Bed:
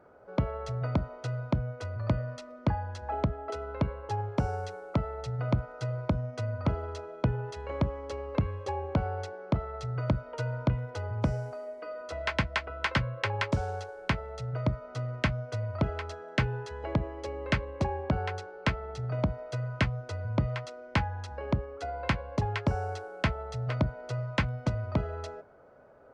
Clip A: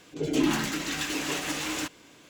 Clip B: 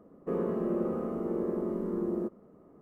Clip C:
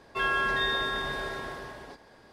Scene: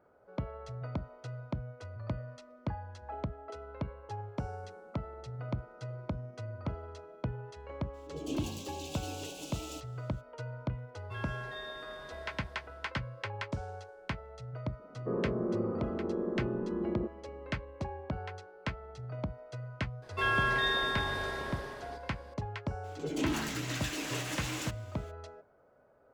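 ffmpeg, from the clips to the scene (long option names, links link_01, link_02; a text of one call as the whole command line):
ffmpeg -i bed.wav -i cue0.wav -i cue1.wav -i cue2.wav -filter_complex "[2:a]asplit=2[link_01][link_02];[1:a]asplit=2[link_03][link_04];[3:a]asplit=2[link_05][link_06];[0:a]volume=-8.5dB[link_07];[link_01]acompressor=threshold=-47dB:ratio=6:attack=3.2:release=140:knee=1:detection=peak[link_08];[link_03]asuperstop=centerf=1500:order=8:qfactor=0.87[link_09];[link_02]lowpass=frequency=1600:width=0.5412,lowpass=frequency=1600:width=1.3066[link_10];[link_04]asoftclip=type=tanh:threshold=-19.5dB[link_11];[link_08]atrim=end=2.81,asetpts=PTS-STARTPTS,volume=-14.5dB,afade=type=in:duration=0.004:curve=hsin,afade=type=out:start_time=2.806:duration=0.004:curve=hsin,adelay=192717S[link_12];[link_09]atrim=end=2.29,asetpts=PTS-STARTPTS,volume=-12dB,afade=type=in:duration=0.02,afade=type=out:start_time=2.27:duration=0.02,adelay=7930[link_13];[link_05]atrim=end=2.32,asetpts=PTS-STARTPTS,volume=-16dB,afade=type=in:duration=0.004:curve=hsin,afade=type=out:start_time=2.316:duration=0.004:curve=hsin,adelay=10950[link_14];[link_10]atrim=end=2.81,asetpts=PTS-STARTPTS,volume=-2.5dB,afade=type=in:duration=0.004:curve=hsin,afade=type=out:start_time=2.806:duration=0.004:curve=hsin,adelay=14790[link_15];[link_06]atrim=end=2.32,asetpts=PTS-STARTPTS,volume=-2dB,afade=type=in:duration=0.004:curve=hsin,afade=type=out:start_time=2.316:duration=0.004:curve=hsin,adelay=20020[link_16];[link_11]atrim=end=2.29,asetpts=PTS-STARTPTS,volume=-6dB,afade=type=in:duration=0.02,afade=type=out:start_time=2.27:duration=0.02,adelay=22830[link_17];[link_07][link_12][link_13][link_14][link_15][link_16][link_17]amix=inputs=7:normalize=0" out.wav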